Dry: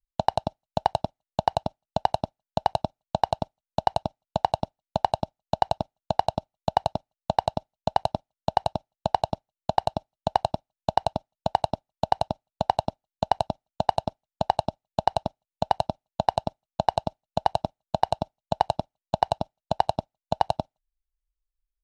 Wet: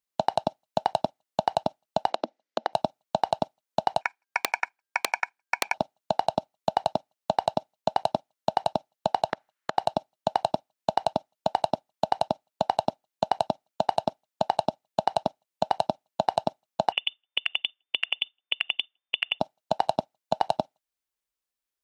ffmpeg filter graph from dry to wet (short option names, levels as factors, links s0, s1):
-filter_complex "[0:a]asettb=1/sr,asplit=3[s0][s1][s2];[s0]atrim=end=2.104[s3];[s1]atrim=start=2.1:end=2.73,asetpts=PTS-STARTPTS,afade=t=in:d=0.004:c=qsin,afade=t=out:st=0.626:d=0.004:c=qsin,highpass=f=210:w=0.5412,highpass=f=210:w=1.3066,equalizer=f=230:t=q:w=4:g=6,equalizer=f=320:t=q:w=4:g=9,equalizer=f=510:t=q:w=4:g=8,equalizer=f=1000:t=q:w=4:g=-3,equalizer=f=2000:t=q:w=4:g=6,lowpass=f=6400:w=0.5412,lowpass=f=6400:w=1.3066,acompressor=threshold=0.0251:ratio=3:attack=3.2:release=140:knee=1:detection=peak[s4];[s2]atrim=start=2.726[s5];[s3][s4]acrossfade=d=0.004:c1=hsin:c2=qsin[s6];[s6][s5]acrossfade=d=0.004:c1=qsin:c2=hsin,asettb=1/sr,asplit=3[s7][s8][s9];[s7]atrim=end=4.014[s10];[s8]atrim=start=4.01:end=5.74,asetpts=PTS-STARTPTS,afade=t=in:d=0.004:c=qsin,afade=t=out:st=1.726:d=0.004:c=qsin,aeval=exprs='(mod(2.11*val(0)+1,2)-1)/2.11':c=same,aeval=exprs='val(0)*sin(2*PI*1600*n/s)':c=same[s11];[s9]atrim=start=5.736[s12];[s10][s11]acrossfade=d=0.004:c1=hsin:c2=qsin[s13];[s13][s12]acrossfade=d=0.004:c1=qsin:c2=hsin,asettb=1/sr,asplit=3[s14][s15][s16];[s14]atrim=end=9.294[s17];[s15]atrim=start=9.29:end=9.77,asetpts=PTS-STARTPTS,afade=t=in:d=0.004:c=qsin,afade=t=out:st=0.476:d=0.004:c=qsin,acompressor=threshold=0.02:ratio=12:attack=3.2:release=140:knee=1:detection=peak,equalizer=f=1600:w=0.97:g=14[s18];[s16]atrim=start=9.766[s19];[s17][s18]acrossfade=d=0.004:c1=hsin:c2=qsin[s20];[s20][s19]acrossfade=d=0.004:c1=qsin:c2=hsin,asettb=1/sr,asplit=3[s21][s22][s23];[s21]atrim=end=16.924[s24];[s22]atrim=start=16.92:end=19.4,asetpts=PTS-STARTPTS,afade=t=in:d=0.004:c=qsin,afade=t=out:st=2.476:d=0.004:c=qsin,lowpass=f=3100:t=q:w=0.5098,lowpass=f=3100:t=q:w=0.6013,lowpass=f=3100:t=q:w=0.9,lowpass=f=3100:t=q:w=2.563,afreqshift=-3600,acompressor=threshold=0.0447:ratio=12:attack=3.2:release=140:knee=1:detection=peak[s25];[s23]atrim=start=19.396[s26];[s24][s25]acrossfade=d=0.004:c1=hsin:c2=qsin[s27];[s27][s26]acrossfade=d=0.004:c1=qsin:c2=hsin,highpass=220,alimiter=limit=0.168:level=0:latency=1:release=19,volume=2.24"